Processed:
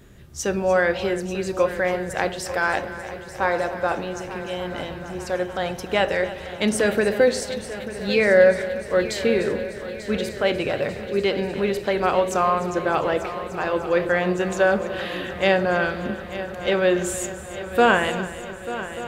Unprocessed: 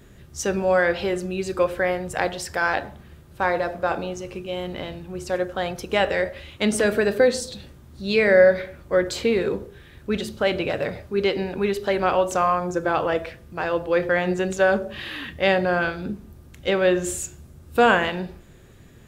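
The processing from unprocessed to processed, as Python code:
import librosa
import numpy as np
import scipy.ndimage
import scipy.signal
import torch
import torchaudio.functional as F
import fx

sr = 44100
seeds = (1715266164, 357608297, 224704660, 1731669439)

y = fx.echo_heads(x, sr, ms=297, heads='first and third', feedback_pct=73, wet_db=-15.0)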